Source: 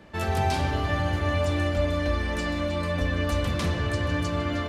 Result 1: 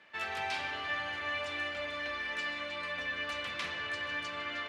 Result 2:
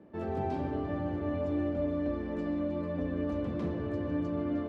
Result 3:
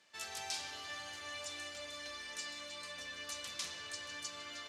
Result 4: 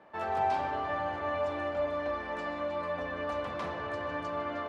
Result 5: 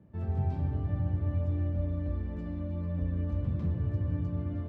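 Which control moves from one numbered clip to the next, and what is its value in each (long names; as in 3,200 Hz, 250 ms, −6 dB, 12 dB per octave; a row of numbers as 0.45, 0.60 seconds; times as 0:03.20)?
resonant band-pass, frequency: 2,300, 310, 6,500, 880, 120 Hertz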